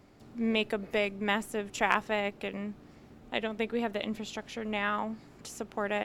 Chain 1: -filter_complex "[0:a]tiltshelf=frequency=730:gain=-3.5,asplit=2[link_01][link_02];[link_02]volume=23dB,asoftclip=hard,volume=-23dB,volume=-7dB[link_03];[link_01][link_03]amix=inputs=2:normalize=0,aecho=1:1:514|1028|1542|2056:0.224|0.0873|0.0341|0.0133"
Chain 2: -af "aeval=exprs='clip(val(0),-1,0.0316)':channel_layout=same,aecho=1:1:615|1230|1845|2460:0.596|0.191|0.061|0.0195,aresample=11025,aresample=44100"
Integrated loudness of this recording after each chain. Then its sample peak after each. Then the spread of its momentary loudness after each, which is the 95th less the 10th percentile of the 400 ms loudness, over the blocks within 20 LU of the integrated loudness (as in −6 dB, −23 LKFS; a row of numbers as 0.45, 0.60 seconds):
−29.0, −32.5 LKFS; −6.5, −9.0 dBFS; 12, 7 LU